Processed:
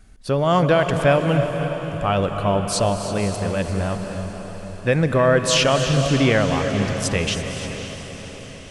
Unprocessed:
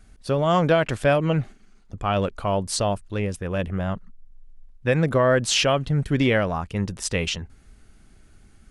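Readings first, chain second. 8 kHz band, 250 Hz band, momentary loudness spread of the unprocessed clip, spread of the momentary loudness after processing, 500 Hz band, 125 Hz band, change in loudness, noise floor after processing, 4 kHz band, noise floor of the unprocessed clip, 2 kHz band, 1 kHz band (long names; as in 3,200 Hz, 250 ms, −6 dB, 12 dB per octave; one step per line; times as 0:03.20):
+3.5 dB, +3.5 dB, 9 LU, 15 LU, +3.5 dB, +3.5 dB, +3.0 dB, −37 dBFS, +3.5 dB, −52 dBFS, +3.5 dB, +3.5 dB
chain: on a send: feedback delay with all-pass diffusion 546 ms, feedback 54%, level −9.5 dB
on the sum: reverb whose tail is shaped and stops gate 360 ms rising, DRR 8 dB
level +2 dB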